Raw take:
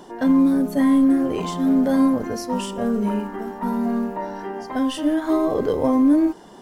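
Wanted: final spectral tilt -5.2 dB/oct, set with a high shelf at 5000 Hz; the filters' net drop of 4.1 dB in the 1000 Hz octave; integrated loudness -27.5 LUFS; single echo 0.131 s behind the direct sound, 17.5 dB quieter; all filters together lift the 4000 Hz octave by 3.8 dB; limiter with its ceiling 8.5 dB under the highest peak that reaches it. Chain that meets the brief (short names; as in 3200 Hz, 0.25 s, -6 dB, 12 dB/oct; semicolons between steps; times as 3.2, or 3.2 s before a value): bell 1000 Hz -5 dB; bell 4000 Hz +9 dB; high shelf 5000 Hz -7 dB; limiter -17.5 dBFS; echo 0.131 s -17.5 dB; gain -2 dB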